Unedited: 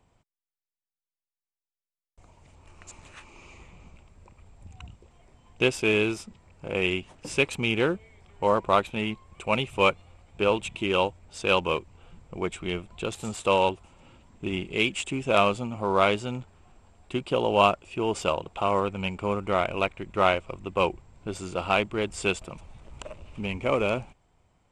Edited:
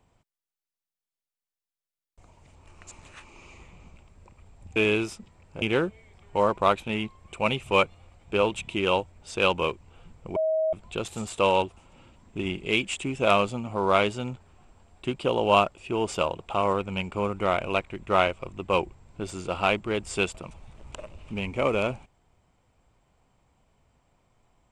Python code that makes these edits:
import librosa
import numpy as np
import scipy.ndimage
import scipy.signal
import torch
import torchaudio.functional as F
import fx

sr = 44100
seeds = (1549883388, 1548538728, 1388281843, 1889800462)

y = fx.edit(x, sr, fx.cut(start_s=4.76, length_s=1.08),
    fx.cut(start_s=6.7, length_s=0.99),
    fx.bleep(start_s=12.43, length_s=0.37, hz=635.0, db=-21.5), tone=tone)